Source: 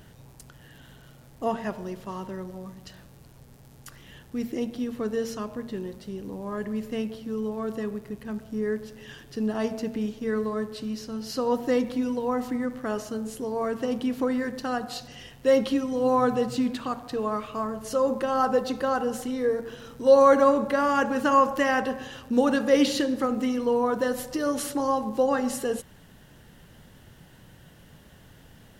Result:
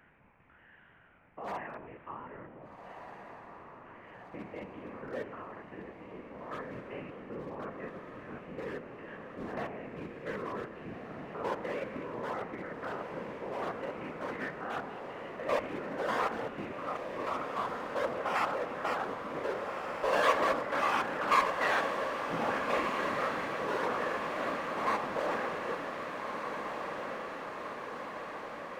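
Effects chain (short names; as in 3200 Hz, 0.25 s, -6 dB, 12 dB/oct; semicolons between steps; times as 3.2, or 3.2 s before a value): stepped spectrum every 0.1 s; elliptic low-pass 2400 Hz, stop band 50 dB; notches 50/100/150/200/250/300/350/400 Hz; one-sided clip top -26 dBFS; whisperiser; tilt shelf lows -9 dB, about 640 Hz; diffused feedback echo 1.596 s, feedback 69%, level -6 dB; gain -6.5 dB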